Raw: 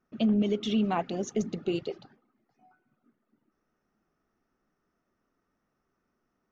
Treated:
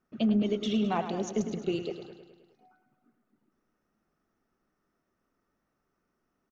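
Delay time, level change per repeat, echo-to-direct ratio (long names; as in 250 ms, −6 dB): 105 ms, −4.5 dB, −8.0 dB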